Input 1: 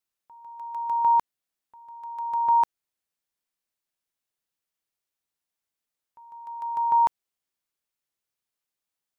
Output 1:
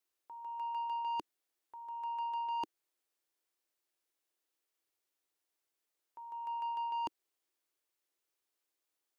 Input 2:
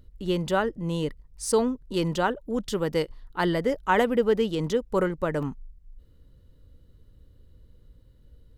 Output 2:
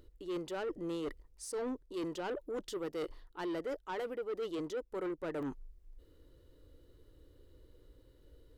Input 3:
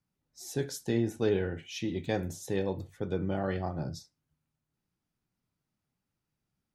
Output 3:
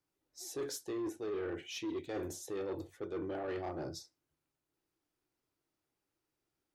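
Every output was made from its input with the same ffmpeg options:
-af "lowshelf=f=260:t=q:w=3:g=-7.5,areverse,acompressor=threshold=0.0282:ratio=12,areverse,asoftclip=type=tanh:threshold=0.0224"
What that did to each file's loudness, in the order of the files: -14.5 LU, -13.5 LU, -7.5 LU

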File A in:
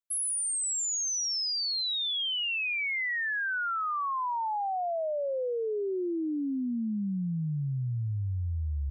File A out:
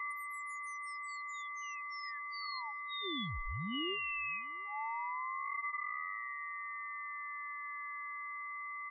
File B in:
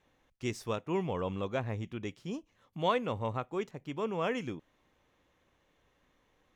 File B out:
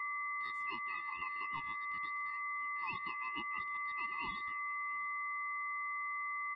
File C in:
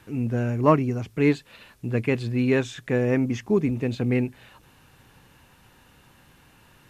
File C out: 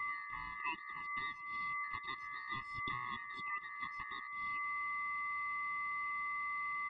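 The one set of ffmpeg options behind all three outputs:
-filter_complex "[0:a]aeval=exprs='val(0)+0.0316*sin(2*PI*440*n/s)':c=same,acompressor=threshold=0.0316:ratio=8,acrossover=split=420 2400:gain=0.112 1 0.0794[s0][s1][s2];[s0][s1][s2]amix=inputs=3:normalize=0,aeval=exprs='val(0)*sin(2*PI*1600*n/s)':c=same,asplit=2[s3][s4];[s4]adelay=699.7,volume=0.0631,highshelf=f=4000:g=-15.7[s5];[s3][s5]amix=inputs=2:normalize=0,afftfilt=real='re*eq(mod(floor(b*sr/1024/420),2),0)':imag='im*eq(mod(floor(b*sr/1024/420),2),0)':win_size=1024:overlap=0.75,volume=1.19"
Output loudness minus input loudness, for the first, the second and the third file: -10.0 LU, -3.5 LU, -16.0 LU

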